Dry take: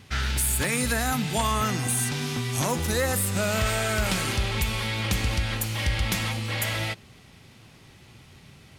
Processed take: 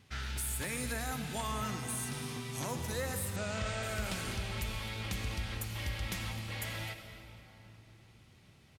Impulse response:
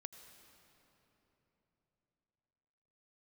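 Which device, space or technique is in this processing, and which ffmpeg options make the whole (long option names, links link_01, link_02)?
cave: -filter_complex "[0:a]aecho=1:1:257:0.158[link_01];[1:a]atrim=start_sample=2205[link_02];[link_01][link_02]afir=irnorm=-1:irlink=0,asettb=1/sr,asplit=3[link_03][link_04][link_05];[link_03]atrim=end=3.364[link_06];[link_04]atrim=start=3.36:end=3.83,asetpts=PTS-STARTPTS,afade=type=in:duration=0.004:curve=qsin,afade=type=out:start_time=0.466:duration=0.004:curve=qsin,lowpass=frequency=7800:width=0.5412,lowpass=frequency=7800:width=1.3066[link_07];[link_05]atrim=start=3.826[link_08];[link_06][link_07]acrossfade=duration=0.004:curve1=hsin:curve2=qsin[link_09];[link_09][link_08]acrossfade=duration=0.004:curve1=qsin:curve2=hsin,volume=-6.5dB"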